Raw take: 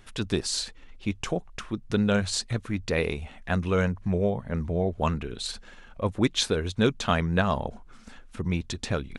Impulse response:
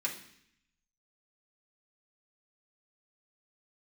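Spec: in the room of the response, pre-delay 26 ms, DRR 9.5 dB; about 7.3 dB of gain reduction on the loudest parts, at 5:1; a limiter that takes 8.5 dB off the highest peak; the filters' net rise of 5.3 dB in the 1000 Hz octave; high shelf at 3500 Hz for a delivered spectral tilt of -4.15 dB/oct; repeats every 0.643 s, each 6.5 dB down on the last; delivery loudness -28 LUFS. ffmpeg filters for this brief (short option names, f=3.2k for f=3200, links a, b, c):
-filter_complex "[0:a]equalizer=f=1k:t=o:g=6,highshelf=f=3.5k:g=8.5,acompressor=threshold=-24dB:ratio=5,alimiter=limit=-20.5dB:level=0:latency=1,aecho=1:1:643|1286|1929|2572|3215|3858:0.473|0.222|0.105|0.0491|0.0231|0.0109,asplit=2[a][b];[1:a]atrim=start_sample=2205,adelay=26[c];[b][c]afir=irnorm=-1:irlink=0,volume=-13.5dB[d];[a][d]amix=inputs=2:normalize=0,volume=3.5dB"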